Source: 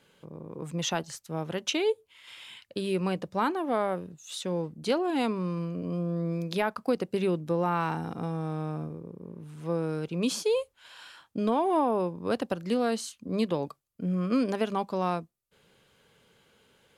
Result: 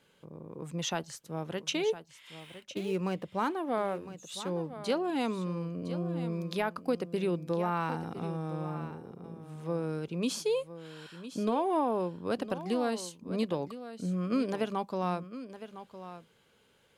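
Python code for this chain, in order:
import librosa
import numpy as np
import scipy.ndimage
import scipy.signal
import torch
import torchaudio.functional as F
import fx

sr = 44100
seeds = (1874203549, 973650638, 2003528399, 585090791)

p1 = fx.median_filter(x, sr, points=9, at=(2.4, 3.56))
p2 = p1 + fx.echo_single(p1, sr, ms=1009, db=-13.0, dry=0)
y = F.gain(torch.from_numpy(p2), -3.5).numpy()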